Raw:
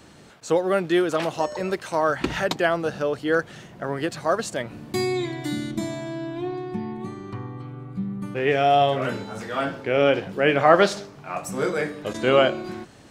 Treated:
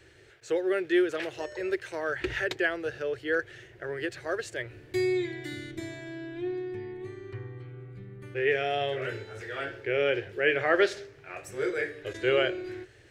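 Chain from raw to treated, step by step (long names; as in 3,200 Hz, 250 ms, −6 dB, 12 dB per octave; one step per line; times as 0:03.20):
drawn EQ curve 120 Hz 0 dB, 170 Hz −20 dB, 250 Hz −19 dB, 370 Hz +3 dB, 700 Hz −10 dB, 1,100 Hz −14 dB, 1,700 Hz +4 dB, 4,200 Hz −5 dB, 10,000 Hz −8 dB
level −4 dB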